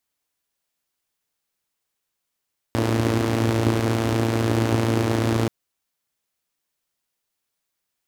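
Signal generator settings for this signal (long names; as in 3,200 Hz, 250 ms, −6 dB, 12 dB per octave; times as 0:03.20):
pulse-train model of a four-cylinder engine, steady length 2.73 s, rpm 3,400, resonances 110/270 Hz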